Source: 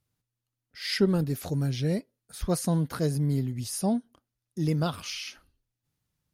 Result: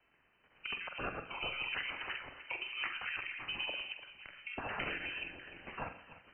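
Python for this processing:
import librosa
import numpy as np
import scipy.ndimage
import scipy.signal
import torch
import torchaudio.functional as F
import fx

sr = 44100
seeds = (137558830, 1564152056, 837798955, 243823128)

y = fx.block_reorder(x, sr, ms=109.0, group=6)
y = fx.highpass(y, sr, hz=360.0, slope=6)
y = fx.env_lowpass_down(y, sr, base_hz=1500.0, full_db=-31.0)
y = fx.over_compress(y, sr, threshold_db=-40.0, ratio=-1.0)
y = fx.freq_invert(y, sr, carrier_hz=2900)
y = fx.doubler(y, sr, ms=46.0, db=-9.0)
y = fx.echo_feedback(y, sr, ms=298, feedback_pct=56, wet_db=-19.0)
y = fx.rev_schroeder(y, sr, rt60_s=0.55, comb_ms=31, drr_db=10.5)
y = fx.spec_gate(y, sr, threshold_db=-10, keep='weak')
y = fx.band_squash(y, sr, depth_pct=40)
y = y * 10.0 ** (7.5 / 20.0)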